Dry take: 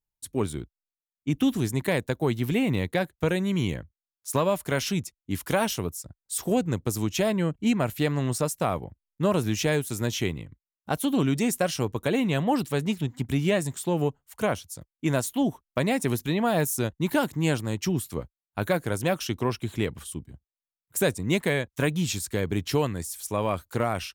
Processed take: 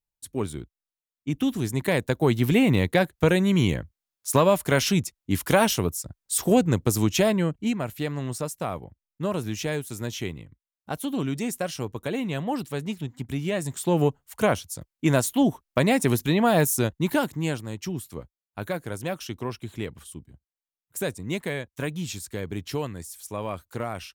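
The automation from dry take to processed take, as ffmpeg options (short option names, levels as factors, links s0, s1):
-af "volume=4.47,afade=t=in:st=1.57:d=0.86:silence=0.473151,afade=t=out:st=7.08:d=0.69:silence=0.354813,afade=t=in:st=13.52:d=0.44:silence=0.398107,afade=t=out:st=16.71:d=0.91:silence=0.354813"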